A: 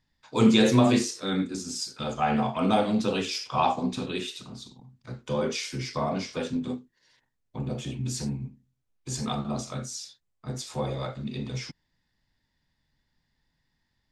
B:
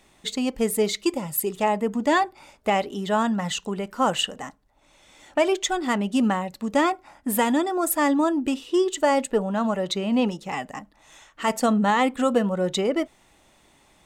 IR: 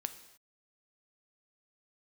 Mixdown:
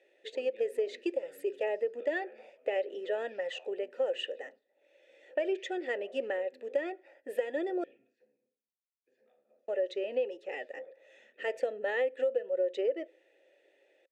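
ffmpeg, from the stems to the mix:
-filter_complex "[0:a]highpass=140,acrossover=split=280 2600:gain=0.0631 1 0.0891[s0][s1][s2];[s0][s1][s2]amix=inputs=3:normalize=0,acompressor=threshold=0.01:ratio=2.5,volume=0.562,asplit=2[s3][s4];[s4]volume=0.237[s5];[1:a]lowshelf=f=260:t=q:w=3:g=-11,volume=1.19,asplit=3[s6][s7][s8];[s6]atrim=end=7.84,asetpts=PTS-STARTPTS,afade=t=out:st=7.836:d=0.004:c=hsin[s9];[s7]atrim=start=7.84:end=9.68,asetpts=PTS-STARTPTS,volume=0[s10];[s8]atrim=start=9.68,asetpts=PTS-STARTPTS,afade=t=in:d=0.004:c=hsin[s11];[s9][s10][s11]concat=n=3:v=0:a=1,asplit=3[s12][s13][s14];[s13]volume=0.0708[s15];[s14]apad=whole_len=622308[s16];[s3][s16]sidechaingate=range=0.0501:threshold=0.00562:ratio=16:detection=peak[s17];[2:a]atrim=start_sample=2205[s18];[s5][s15]amix=inputs=2:normalize=0[s19];[s19][s18]afir=irnorm=-1:irlink=0[s20];[s17][s12][s20]amix=inputs=3:normalize=0,asplit=3[s21][s22][s23];[s21]bandpass=f=530:t=q:w=8,volume=1[s24];[s22]bandpass=f=1840:t=q:w=8,volume=0.501[s25];[s23]bandpass=f=2480:t=q:w=8,volume=0.355[s26];[s24][s25][s26]amix=inputs=3:normalize=0,acompressor=threshold=0.0447:ratio=6"

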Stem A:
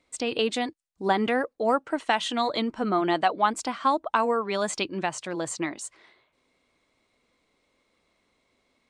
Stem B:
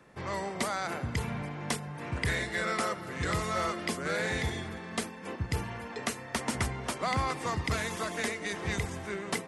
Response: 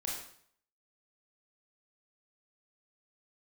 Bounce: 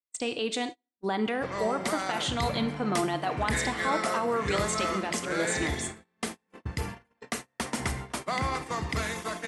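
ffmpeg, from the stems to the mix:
-filter_complex "[0:a]highshelf=f=4400:g=4,alimiter=limit=0.119:level=0:latency=1:release=32,volume=0.631,asplit=2[s0][s1];[s1]volume=0.355[s2];[1:a]adelay=1250,volume=0.841,asplit=2[s3][s4];[s4]volume=0.376[s5];[2:a]atrim=start_sample=2205[s6];[s2][s5]amix=inputs=2:normalize=0[s7];[s7][s6]afir=irnorm=-1:irlink=0[s8];[s0][s3][s8]amix=inputs=3:normalize=0,agate=range=0.0178:threshold=0.0178:ratio=16:detection=peak,equalizer=f=96:t=o:w=0.25:g=-7.5"

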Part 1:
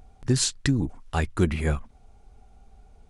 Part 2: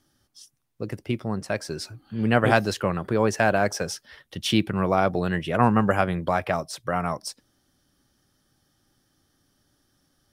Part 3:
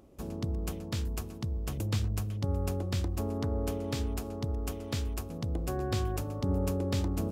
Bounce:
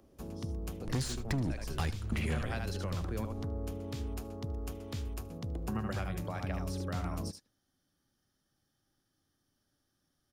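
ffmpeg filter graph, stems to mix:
-filter_complex "[0:a]volume=15,asoftclip=hard,volume=0.0668,adelay=650,volume=1.41,asplit=2[s0][s1];[s1]volume=0.112[s2];[1:a]volume=0.237,asplit=3[s3][s4][s5];[s3]atrim=end=3.25,asetpts=PTS-STARTPTS,afade=t=out:st=3.246:d=0.004:c=hsin[s6];[s4]atrim=start=3.25:end=5.68,asetpts=PTS-STARTPTS,volume=0[s7];[s5]atrim=start=5.68,asetpts=PTS-STARTPTS,afade=t=in:d=0.004:c=hsin[s8];[s6][s7][s8]concat=n=3:v=0:a=1,asplit=3[s9][s10][s11];[s10]volume=0.531[s12];[2:a]acrossover=split=280[s13][s14];[s14]acompressor=threshold=0.0141:ratio=6[s15];[s13][s15]amix=inputs=2:normalize=0,volume=0.596,asplit=2[s16][s17];[s17]volume=0.0668[s18];[s11]apad=whole_len=165200[s19];[s0][s19]sidechaingate=range=0.0224:threshold=0.00158:ratio=16:detection=peak[s20];[s2][s12][s18]amix=inputs=3:normalize=0,aecho=0:1:75:1[s21];[s20][s9][s16][s21]amix=inputs=4:normalize=0,bandreject=f=7900:w=17,acrossover=split=230|2000[s22][s23][s24];[s22]acompressor=threshold=0.0224:ratio=4[s25];[s23]acompressor=threshold=0.01:ratio=4[s26];[s24]acompressor=threshold=0.00708:ratio=4[s27];[s25][s26][s27]amix=inputs=3:normalize=0"

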